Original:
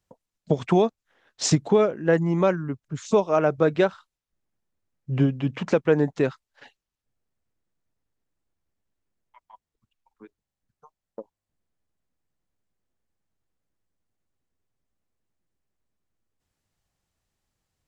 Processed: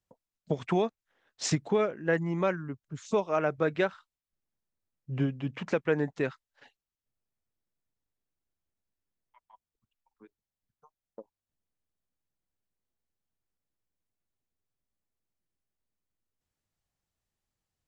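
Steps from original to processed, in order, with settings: dynamic bell 2 kHz, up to +7 dB, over -41 dBFS, Q 1.1; trim -8 dB

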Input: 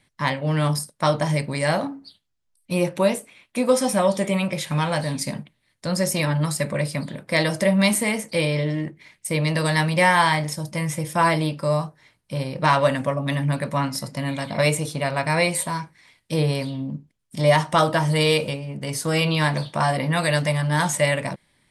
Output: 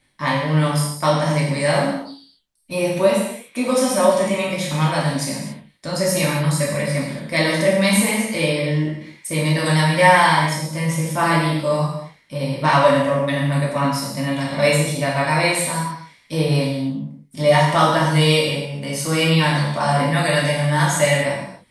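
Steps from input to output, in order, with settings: gated-style reverb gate 310 ms falling, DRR -5 dB; trim -2.5 dB

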